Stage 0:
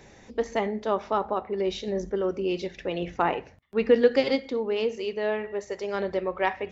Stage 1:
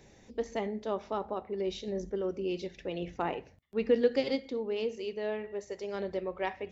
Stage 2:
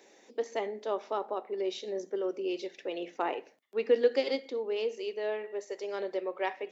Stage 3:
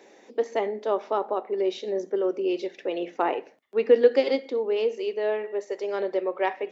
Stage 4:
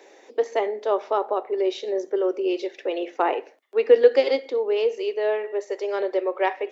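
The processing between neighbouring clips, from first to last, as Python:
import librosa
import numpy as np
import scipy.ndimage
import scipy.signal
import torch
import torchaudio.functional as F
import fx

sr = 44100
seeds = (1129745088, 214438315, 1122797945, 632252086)

y1 = fx.peak_eq(x, sr, hz=1300.0, db=-6.0, octaves=1.8)
y1 = y1 * 10.0 ** (-5.0 / 20.0)
y2 = scipy.signal.sosfilt(scipy.signal.butter(4, 310.0, 'highpass', fs=sr, output='sos'), y1)
y2 = y2 * 10.0 ** (1.5 / 20.0)
y3 = fx.high_shelf(y2, sr, hz=3300.0, db=-9.5)
y3 = y3 * 10.0 ** (7.5 / 20.0)
y4 = scipy.signal.sosfilt(scipy.signal.butter(4, 320.0, 'highpass', fs=sr, output='sos'), y3)
y4 = y4 * 10.0 ** (3.0 / 20.0)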